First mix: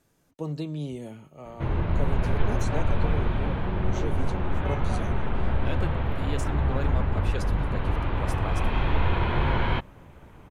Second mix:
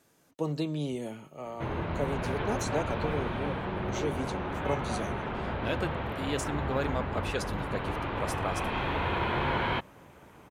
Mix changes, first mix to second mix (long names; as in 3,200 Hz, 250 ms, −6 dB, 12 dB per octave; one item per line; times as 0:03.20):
speech +4.0 dB
master: add high-pass filter 250 Hz 6 dB per octave